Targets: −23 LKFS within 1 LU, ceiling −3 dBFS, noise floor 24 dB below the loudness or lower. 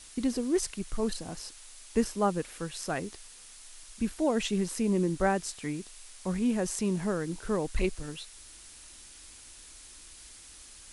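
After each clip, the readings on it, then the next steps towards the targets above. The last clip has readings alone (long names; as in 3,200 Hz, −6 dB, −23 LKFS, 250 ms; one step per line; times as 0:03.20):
background noise floor −51 dBFS; target noise floor −56 dBFS; integrated loudness −31.5 LKFS; sample peak −14.0 dBFS; target loudness −23.0 LKFS
→ noise reduction from a noise print 6 dB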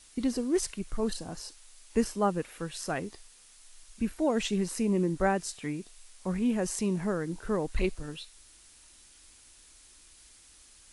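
background noise floor −57 dBFS; integrated loudness −31.5 LKFS; sample peak −14.5 dBFS; target loudness −23.0 LKFS
→ level +8.5 dB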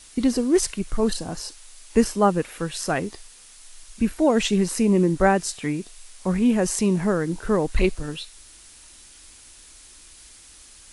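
integrated loudness −23.0 LKFS; sample peak −6.0 dBFS; background noise floor −48 dBFS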